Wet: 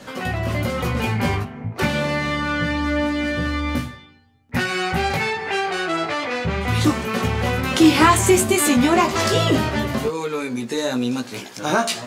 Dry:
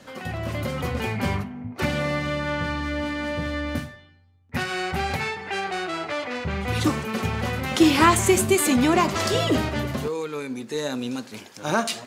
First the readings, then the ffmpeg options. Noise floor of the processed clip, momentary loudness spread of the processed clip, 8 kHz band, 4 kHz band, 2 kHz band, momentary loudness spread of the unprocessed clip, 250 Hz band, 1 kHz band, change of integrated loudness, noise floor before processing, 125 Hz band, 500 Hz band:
-42 dBFS, 10 LU, +3.5 dB, +4.0 dB, +4.5 dB, 12 LU, +4.0 dB, +4.0 dB, +4.0 dB, -49 dBFS, +4.5 dB, +3.5 dB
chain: -filter_complex "[0:a]flanger=delay=16:depth=2.2:speed=0.26,asplit=2[a][b];[b]acompressor=threshold=-34dB:ratio=6,volume=1dB[c];[a][c]amix=inputs=2:normalize=0,volume=4.5dB"

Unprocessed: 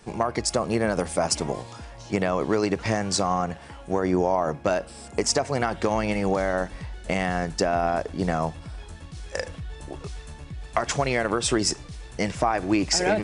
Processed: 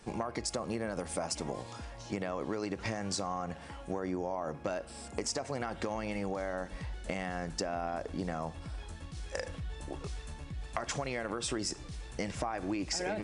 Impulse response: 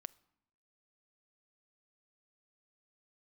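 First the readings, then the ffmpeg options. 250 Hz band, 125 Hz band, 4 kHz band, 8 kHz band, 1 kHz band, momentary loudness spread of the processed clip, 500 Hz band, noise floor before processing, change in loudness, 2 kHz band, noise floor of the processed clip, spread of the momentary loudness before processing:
-11.0 dB, -10.0 dB, -10.5 dB, -10.5 dB, -12.0 dB, 8 LU, -12.0 dB, -43 dBFS, -12.0 dB, -11.0 dB, -48 dBFS, 16 LU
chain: -filter_complex "[0:a]asplit=2[a][b];[b]alimiter=limit=-17.5dB:level=0:latency=1,volume=-2dB[c];[a][c]amix=inputs=2:normalize=0[d];[1:a]atrim=start_sample=2205,asetrate=66150,aresample=44100[e];[d][e]afir=irnorm=-1:irlink=0,acompressor=threshold=-32dB:ratio=4"

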